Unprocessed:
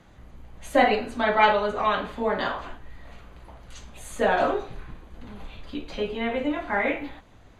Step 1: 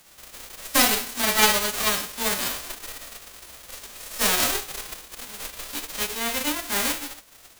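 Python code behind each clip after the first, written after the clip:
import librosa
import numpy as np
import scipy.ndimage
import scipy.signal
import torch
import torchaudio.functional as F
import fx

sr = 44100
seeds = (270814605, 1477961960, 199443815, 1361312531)

y = fx.envelope_flatten(x, sr, power=0.1)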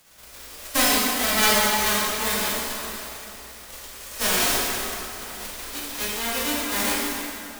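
y = fx.rev_plate(x, sr, seeds[0], rt60_s=3.0, hf_ratio=0.7, predelay_ms=0, drr_db=-4.5)
y = y * librosa.db_to_amplitude(-4.0)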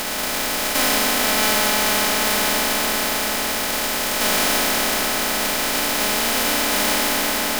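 y = fx.bin_compress(x, sr, power=0.2)
y = y * librosa.db_to_amplitude(-4.5)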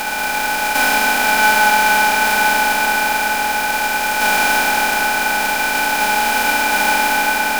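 y = fx.small_body(x, sr, hz=(840.0, 1500.0, 2400.0), ring_ms=60, db=18)
y = y * librosa.db_to_amplitude(-1.5)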